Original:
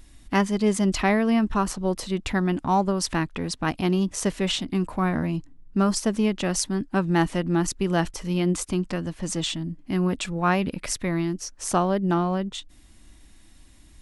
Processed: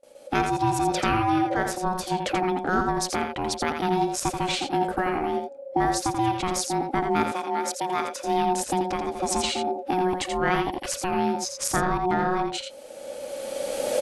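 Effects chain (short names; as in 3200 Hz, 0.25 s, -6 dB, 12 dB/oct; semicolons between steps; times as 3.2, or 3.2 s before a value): recorder AGC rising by 16 dB/s; gate with hold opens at -38 dBFS; ring modulator 550 Hz; 7.23–8.24 Bessel high-pass 440 Hz, order 2; echo 84 ms -6 dB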